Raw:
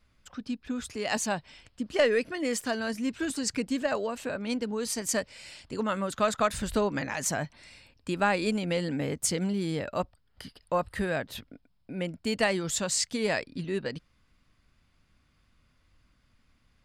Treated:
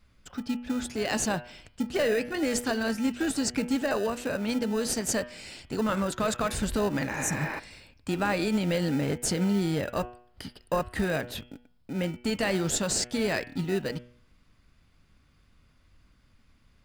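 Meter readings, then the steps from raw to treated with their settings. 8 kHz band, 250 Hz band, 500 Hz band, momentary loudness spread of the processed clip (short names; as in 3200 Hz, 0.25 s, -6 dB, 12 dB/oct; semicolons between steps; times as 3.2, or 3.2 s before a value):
+0.5 dB, +3.0 dB, 0.0 dB, 12 LU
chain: spectral repair 7.14–7.56, 300–5500 Hz before; in parallel at -9 dB: sample-rate reducer 1100 Hz, jitter 0%; on the sum: de-hum 121.4 Hz, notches 28; limiter -20 dBFS, peak gain reduction 8 dB; gain +2.5 dB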